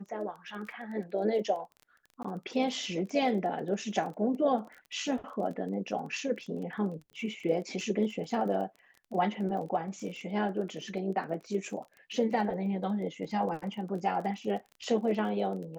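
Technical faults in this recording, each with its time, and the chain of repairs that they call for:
crackle 23/s -40 dBFS
2.23–2.25 gap 15 ms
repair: de-click; interpolate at 2.23, 15 ms

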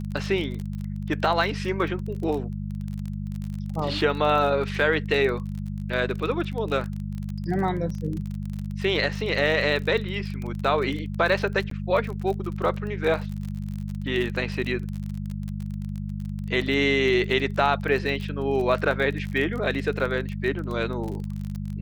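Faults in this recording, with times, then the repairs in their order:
crackle 32/s -30 dBFS
hum 50 Hz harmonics 4 -31 dBFS
11.7–11.71 gap 13 ms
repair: de-click; de-hum 50 Hz, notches 4; interpolate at 11.7, 13 ms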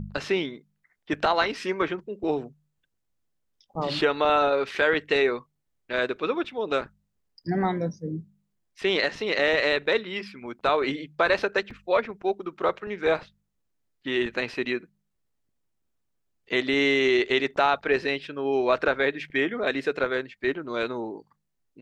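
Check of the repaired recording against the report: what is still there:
none

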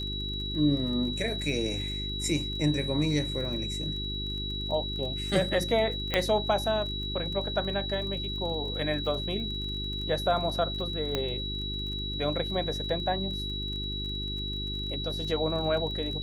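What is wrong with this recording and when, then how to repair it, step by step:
crackle 28/s -37 dBFS
hum 50 Hz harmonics 8 -36 dBFS
tone 3900 Hz -34 dBFS
6.14 pop -11 dBFS
11.15 pop -14 dBFS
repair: de-click; de-hum 50 Hz, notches 8; notch 3900 Hz, Q 30

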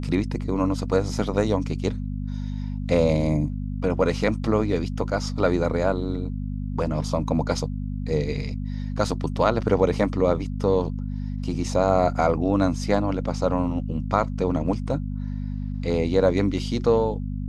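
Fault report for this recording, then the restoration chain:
hum 50 Hz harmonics 5 -29 dBFS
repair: de-hum 50 Hz, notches 5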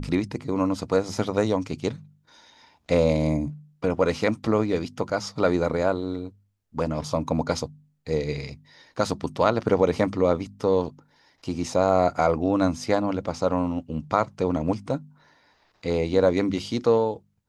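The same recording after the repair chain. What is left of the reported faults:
none

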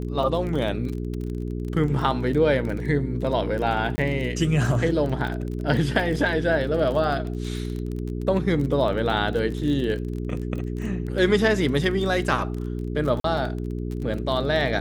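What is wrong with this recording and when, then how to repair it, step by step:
crackle 27/s -29 dBFS
hum 60 Hz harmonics 7 -29 dBFS
3.96–3.98 gap 20 ms
13.2–13.24 gap 43 ms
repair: de-click; de-hum 60 Hz, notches 7; interpolate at 3.96, 20 ms; interpolate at 13.2, 43 ms

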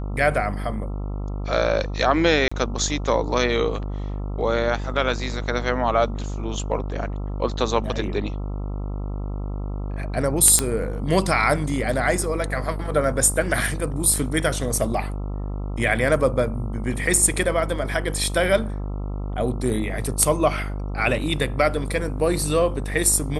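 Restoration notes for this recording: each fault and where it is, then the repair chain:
buzz 50 Hz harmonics 27 -28 dBFS
2.48–2.52 gap 35 ms
10.59 pop -3 dBFS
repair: de-click; de-hum 50 Hz, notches 27; interpolate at 2.48, 35 ms

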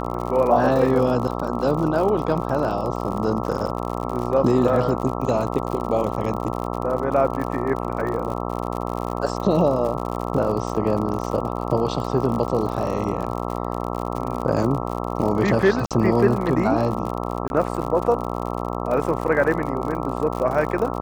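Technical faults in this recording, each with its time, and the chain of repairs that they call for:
buzz 60 Hz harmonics 22 -27 dBFS
crackle 60/s -27 dBFS
15.86–15.91 gap 47 ms
17.48–17.5 gap 21 ms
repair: de-click; de-hum 60 Hz, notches 22; interpolate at 15.86, 47 ms; interpolate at 17.48, 21 ms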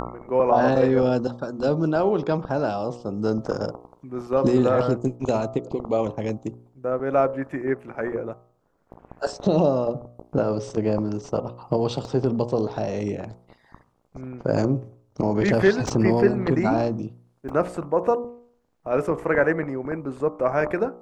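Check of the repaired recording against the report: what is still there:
none

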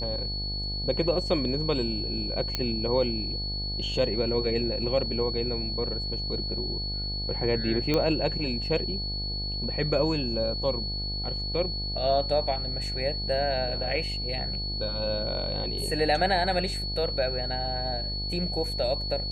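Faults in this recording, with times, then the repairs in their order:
buzz 50 Hz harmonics 18 -34 dBFS
tone 4400 Hz -32 dBFS
2.55 pop -12 dBFS
7.94 pop -12 dBFS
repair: de-click; de-hum 50 Hz, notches 18; notch 4400 Hz, Q 30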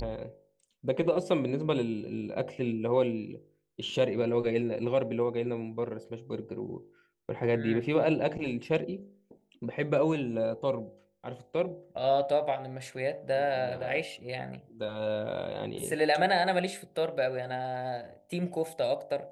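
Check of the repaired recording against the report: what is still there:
none

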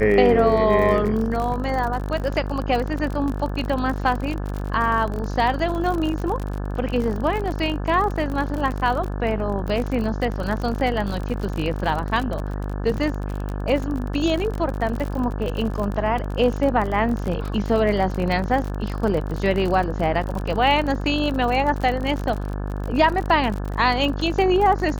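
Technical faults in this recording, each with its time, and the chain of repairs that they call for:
buzz 50 Hz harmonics 35 -27 dBFS
crackle 46/s -26 dBFS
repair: de-click; de-hum 50 Hz, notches 35

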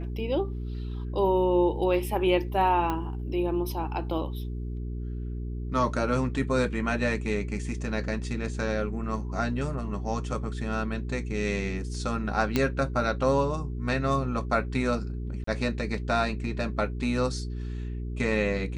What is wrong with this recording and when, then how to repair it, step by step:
hum 60 Hz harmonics 7 -33 dBFS
2.9 pop -16 dBFS
12.56 pop -10 dBFS
15.44–15.47 gap 34 ms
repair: de-click; de-hum 60 Hz, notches 7; interpolate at 15.44, 34 ms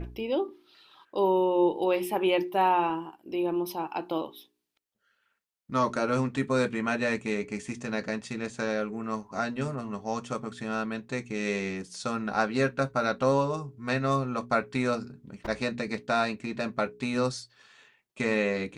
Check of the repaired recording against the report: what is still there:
none

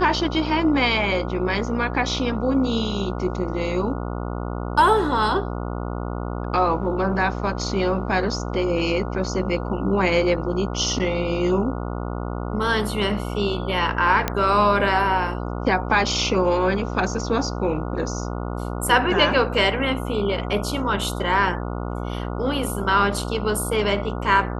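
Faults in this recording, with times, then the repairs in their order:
buzz 60 Hz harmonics 24 -28 dBFS
14.28 pop -6 dBFS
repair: de-click; de-hum 60 Hz, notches 24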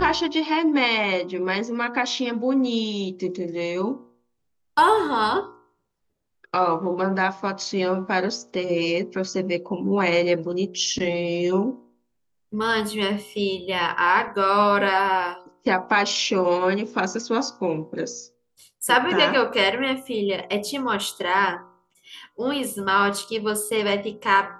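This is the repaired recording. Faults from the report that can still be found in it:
none

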